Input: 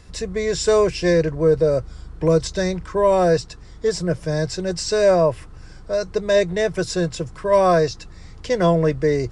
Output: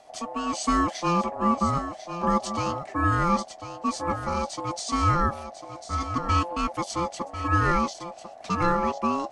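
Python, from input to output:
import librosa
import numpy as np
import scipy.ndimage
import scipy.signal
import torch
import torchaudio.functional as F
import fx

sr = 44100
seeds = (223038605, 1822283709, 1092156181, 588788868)

p1 = x * np.sin(2.0 * np.pi * 690.0 * np.arange(len(x)) / sr)
p2 = p1 + fx.echo_single(p1, sr, ms=1047, db=-10.5, dry=0)
y = p2 * librosa.db_to_amplitude(-4.0)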